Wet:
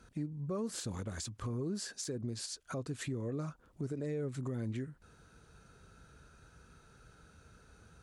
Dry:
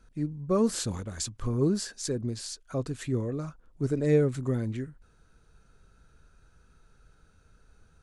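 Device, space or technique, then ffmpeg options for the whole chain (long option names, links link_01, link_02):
podcast mastering chain: -af "highpass=69,deesser=0.6,acompressor=threshold=-43dB:ratio=2.5,alimiter=level_in=10.5dB:limit=-24dB:level=0:latency=1:release=113,volume=-10.5dB,volume=5dB" -ar 48000 -c:a libmp3lame -b:a 96k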